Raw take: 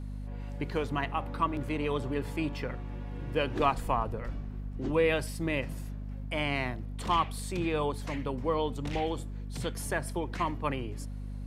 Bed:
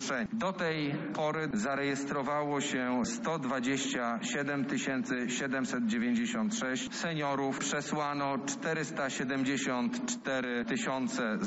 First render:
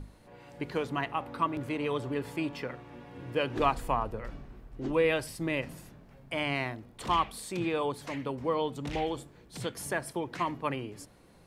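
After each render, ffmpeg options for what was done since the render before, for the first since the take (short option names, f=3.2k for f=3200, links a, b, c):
-af "bandreject=f=50:t=h:w=6,bandreject=f=100:t=h:w=6,bandreject=f=150:t=h:w=6,bandreject=f=200:t=h:w=6,bandreject=f=250:t=h:w=6"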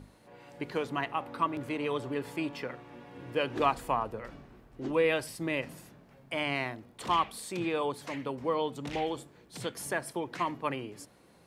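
-af "highpass=f=160:p=1"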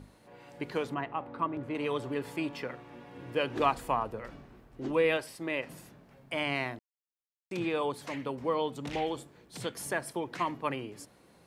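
-filter_complex "[0:a]asettb=1/sr,asplit=3[a][b][c];[a]atrim=end=0.944[d];[b]atrim=start=0.94:end=1.75,asetpts=PTS-STARTPTS,afade=t=in:d=0.004:c=qsin,afade=t=out:st=0.806:d=0.004:c=qsin,lowpass=f=1.2k:p=1[e];[c]atrim=start=1.746[f];[d][e]acrossfade=d=0.004:c1=hsin:c2=qsin[g];[g][f]acrossfade=d=0.004:c1=qsin:c2=hsin,asettb=1/sr,asplit=3[h][i][j];[h]atrim=end=5.174[k];[i]atrim=start=5.17:end=5.7,asetpts=PTS-STARTPTS,afade=t=in:d=0.004:c=qsin,afade=t=out:st=0.526:d=0.004:c=qsin,bass=f=250:g=-9,treble=f=4k:g=-5[l];[j]atrim=start=5.696[m];[k][l]acrossfade=d=0.004:c1=hsin:c2=qsin[n];[n][m]acrossfade=d=0.004:c1=qsin:c2=hsin,asplit=3[o][p][q];[o]atrim=end=6.79,asetpts=PTS-STARTPTS,afade=t=out:st=6.786:d=0.004:c=hsin[r];[p]atrim=start=6.79:end=7.51,asetpts=PTS-STARTPTS,volume=0[s];[q]atrim=start=7.51,asetpts=PTS-STARTPTS,afade=t=in:d=0.004:c=hsin[t];[r][s][t]concat=n=3:v=0:a=1"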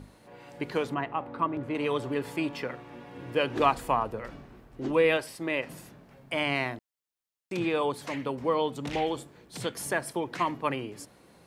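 -af "volume=3.5dB"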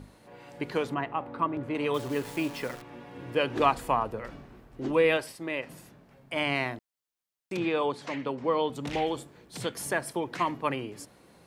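-filter_complex "[0:a]asettb=1/sr,asplit=3[a][b][c];[a]atrim=end=1.944[d];[b]atrim=start=1.94:end=2.82,asetpts=PTS-STARTPTS,afade=t=in:d=0.004:c=qsin,afade=t=out:st=0.876:d=0.004:c=qsin,acrusher=bits=8:dc=4:mix=0:aa=0.000001[e];[c]atrim=start=2.816[f];[d][e]acrossfade=d=0.004:c1=hsin:c2=qsin[g];[g][f]acrossfade=d=0.004:c1=qsin:c2=hsin,asettb=1/sr,asplit=3[h][i][j];[h]atrim=end=7.574[k];[i]atrim=start=7.57:end=8.7,asetpts=PTS-STARTPTS,afade=t=in:d=0.004:c=qsin,afade=t=out:st=1.126:d=0.004:c=qsin,highpass=130,lowpass=6k[l];[j]atrim=start=8.696[m];[k][l]acrossfade=d=0.004:c1=hsin:c2=qsin[n];[n][m]acrossfade=d=0.004:c1=qsin:c2=hsin,asplit=3[o][p][q];[o]atrim=end=5.322[r];[p]atrim=start=5.318:end=6.362,asetpts=PTS-STARTPTS,volume=-3dB[s];[q]atrim=start=6.358[t];[r][s]acrossfade=d=0.004:c1=hsin:c2=hsin[u];[u][t]acrossfade=d=0.004:c1=hsin:c2=hsin"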